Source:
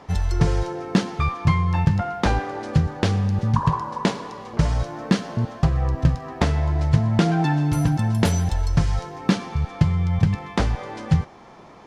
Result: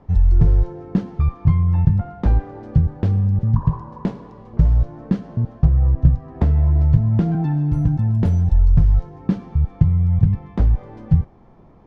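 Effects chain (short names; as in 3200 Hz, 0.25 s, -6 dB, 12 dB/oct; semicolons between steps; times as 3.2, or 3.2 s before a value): tilt -4.5 dB/oct; 6.34–7.35 three-band squash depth 40%; gain -10.5 dB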